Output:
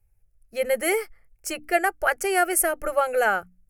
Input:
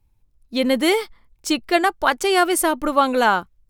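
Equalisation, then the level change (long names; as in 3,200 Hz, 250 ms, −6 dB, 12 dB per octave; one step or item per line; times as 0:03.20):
parametric band 11,000 Hz +7 dB 0.39 octaves
mains-hum notches 60/120/180/240/300 Hz
phaser with its sweep stopped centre 1,000 Hz, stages 6
−1.5 dB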